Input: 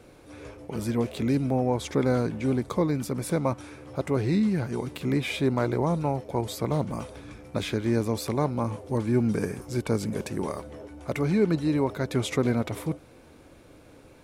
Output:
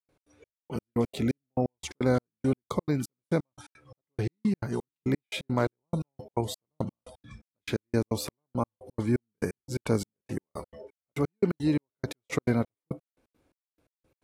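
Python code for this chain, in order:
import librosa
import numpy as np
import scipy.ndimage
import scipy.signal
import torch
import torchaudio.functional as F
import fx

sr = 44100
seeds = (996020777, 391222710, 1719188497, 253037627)

y = fx.noise_reduce_blind(x, sr, reduce_db=18)
y = fx.step_gate(y, sr, bpm=172, pattern='.x.xx...x.', floor_db=-60.0, edge_ms=4.5)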